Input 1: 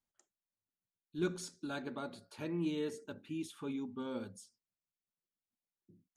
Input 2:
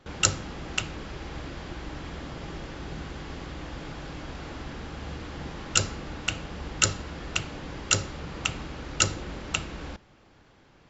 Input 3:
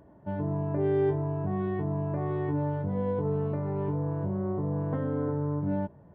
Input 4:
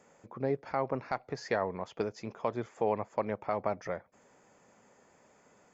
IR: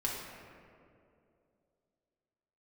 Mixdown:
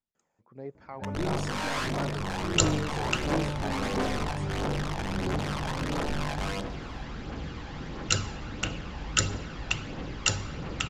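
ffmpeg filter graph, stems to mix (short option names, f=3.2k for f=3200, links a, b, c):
-filter_complex "[0:a]alimiter=level_in=7.5dB:limit=-24dB:level=0:latency=1,volume=-7.5dB,volume=-4.5dB[a];[1:a]adelay=2350,volume=-12dB,asplit=2[b][c];[c]volume=-11.5dB[d];[2:a]lowpass=f=2.1k:w=0.5412,lowpass=f=2.1k:w=1.3066,aeval=exprs='(mod(16.8*val(0)+1,2)-1)/16.8':c=same,adelay=750,volume=-12.5dB,asplit=3[e][f][g];[f]volume=-14dB[h];[g]volume=-22.5dB[i];[3:a]adelay=150,volume=-17dB,asplit=2[j][k];[k]volume=-5.5dB[l];[4:a]atrim=start_sample=2205[m];[d][h]amix=inputs=2:normalize=0[n];[n][m]afir=irnorm=-1:irlink=0[o];[i][l]amix=inputs=2:normalize=0,aecho=0:1:415:1[p];[a][b][e][j][o][p]amix=inputs=6:normalize=0,lowpass=7.1k,dynaudnorm=f=110:g=13:m=8dB,aphaser=in_gain=1:out_gain=1:delay=1.3:decay=0.39:speed=1.5:type=triangular"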